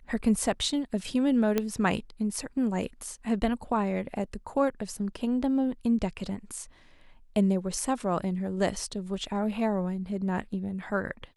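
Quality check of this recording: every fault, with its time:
1.58 pop -12 dBFS

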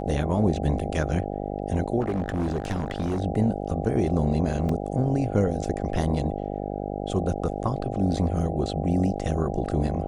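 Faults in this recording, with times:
buzz 50 Hz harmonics 16 -31 dBFS
2–3.2 clipped -22.5 dBFS
4.69 gap 2.9 ms

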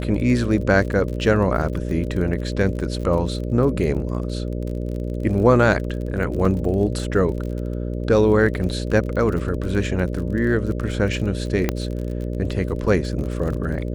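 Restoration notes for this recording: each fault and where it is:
buzz 60 Hz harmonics 10 -26 dBFS
crackle 35/s -29 dBFS
6.45 gap 3.5 ms
11.69 pop -6 dBFS

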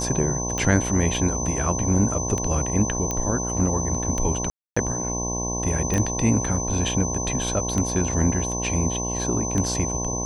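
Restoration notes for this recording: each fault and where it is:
buzz 60 Hz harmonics 18 -29 dBFS
tick 33 1/3 rpm -12 dBFS
tone 6100 Hz -28 dBFS
3.11 pop -11 dBFS
4.5–4.76 gap 0.265 s
5.94 pop -12 dBFS

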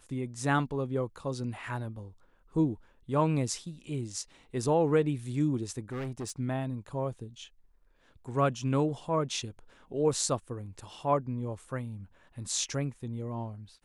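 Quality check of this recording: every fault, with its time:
5.92–6.32 clipped -32.5 dBFS

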